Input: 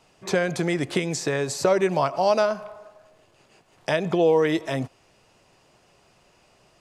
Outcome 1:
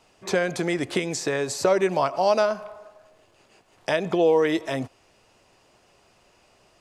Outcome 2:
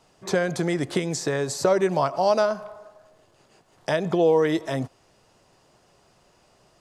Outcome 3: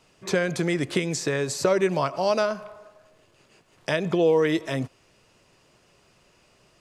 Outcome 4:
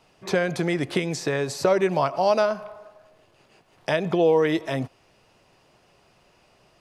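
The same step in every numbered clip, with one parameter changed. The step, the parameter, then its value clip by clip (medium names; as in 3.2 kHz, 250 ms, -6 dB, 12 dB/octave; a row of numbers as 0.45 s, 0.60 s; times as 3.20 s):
peaking EQ, frequency: 150 Hz, 2.5 kHz, 770 Hz, 7.4 kHz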